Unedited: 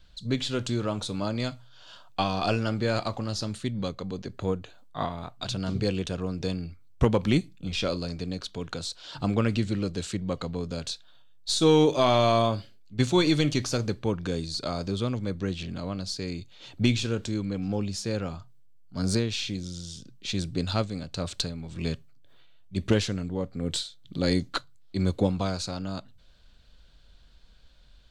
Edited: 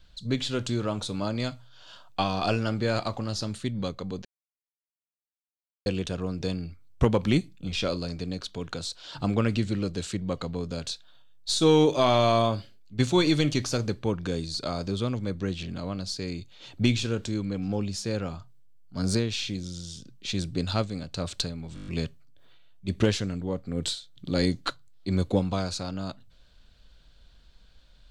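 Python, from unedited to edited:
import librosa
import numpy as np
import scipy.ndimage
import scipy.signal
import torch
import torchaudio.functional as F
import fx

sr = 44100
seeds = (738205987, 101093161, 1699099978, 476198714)

y = fx.edit(x, sr, fx.silence(start_s=4.25, length_s=1.61),
    fx.stutter(start_s=21.75, slice_s=0.02, count=7), tone=tone)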